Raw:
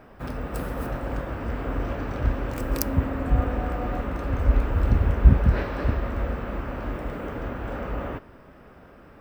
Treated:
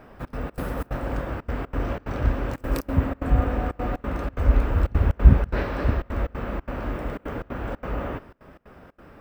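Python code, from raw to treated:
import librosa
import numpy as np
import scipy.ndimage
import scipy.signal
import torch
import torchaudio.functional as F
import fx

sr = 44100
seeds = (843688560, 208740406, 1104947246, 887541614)

y = fx.step_gate(x, sr, bpm=182, pattern='xxx.xx.xxx.xxx', floor_db=-24.0, edge_ms=4.5)
y = y * librosa.db_to_amplitude(1.5)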